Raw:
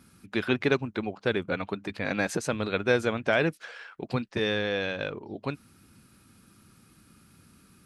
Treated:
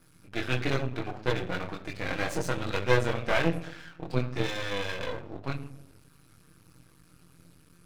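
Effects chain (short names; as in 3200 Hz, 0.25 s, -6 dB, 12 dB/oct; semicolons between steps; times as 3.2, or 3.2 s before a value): notch comb 210 Hz; on a send at -6.5 dB: reverb RT60 0.80 s, pre-delay 6 ms; on the sum: chorus voices 6, 0.31 Hz, delay 23 ms, depth 1.4 ms; half-wave rectifier; gain +4.5 dB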